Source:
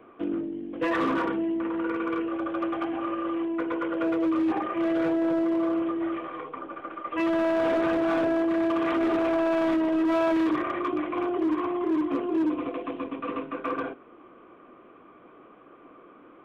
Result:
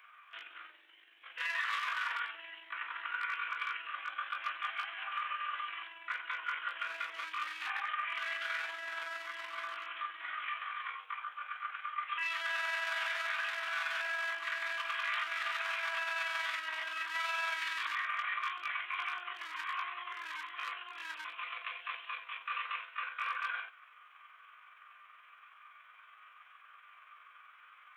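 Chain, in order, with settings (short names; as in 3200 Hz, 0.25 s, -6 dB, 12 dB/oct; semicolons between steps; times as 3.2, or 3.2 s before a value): HPF 1500 Hz 24 dB/oct; limiter -32 dBFS, peak gain reduction 10.5 dB; granular stretch 1.7×, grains 94 ms; gain +7 dB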